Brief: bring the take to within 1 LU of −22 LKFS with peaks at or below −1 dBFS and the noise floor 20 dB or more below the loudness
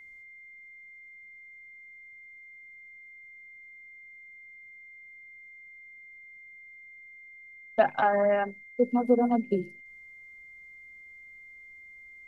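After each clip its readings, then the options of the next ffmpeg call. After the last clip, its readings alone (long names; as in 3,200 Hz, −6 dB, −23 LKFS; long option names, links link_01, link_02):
interfering tone 2,100 Hz; level of the tone −47 dBFS; integrated loudness −26.5 LKFS; sample peak −10.5 dBFS; target loudness −22.0 LKFS
→ -af "bandreject=frequency=2100:width=30"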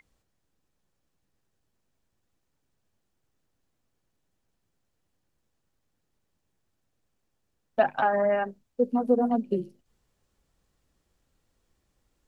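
interfering tone none found; integrated loudness −26.5 LKFS; sample peak −10.5 dBFS; target loudness −22.0 LKFS
→ -af "volume=4.5dB"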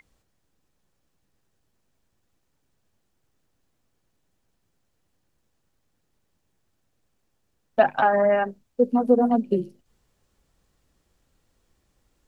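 integrated loudness −22.0 LKFS; sample peak −6.0 dBFS; background noise floor −73 dBFS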